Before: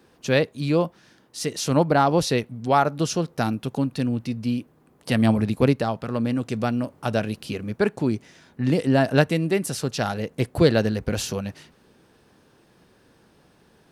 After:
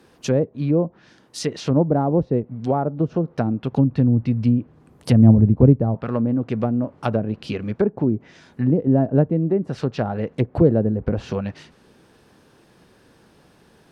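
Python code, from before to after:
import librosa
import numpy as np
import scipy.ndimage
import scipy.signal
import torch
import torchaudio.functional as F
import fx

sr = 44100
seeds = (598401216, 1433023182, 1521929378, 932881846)

y = fx.env_lowpass_down(x, sr, base_hz=500.0, full_db=-19.0)
y = fx.peak_eq(y, sr, hz=78.0, db=9.5, octaves=2.1, at=(3.72, 5.95))
y = y * 10.0 ** (3.5 / 20.0)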